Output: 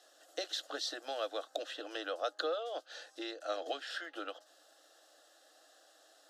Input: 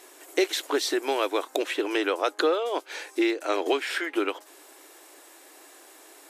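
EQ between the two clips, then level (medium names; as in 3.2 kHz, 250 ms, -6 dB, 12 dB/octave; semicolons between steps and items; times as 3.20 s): three-band isolator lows -23 dB, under 330 Hz, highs -23 dB, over 5 kHz; static phaser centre 400 Hz, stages 4; static phaser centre 940 Hz, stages 4; 0.0 dB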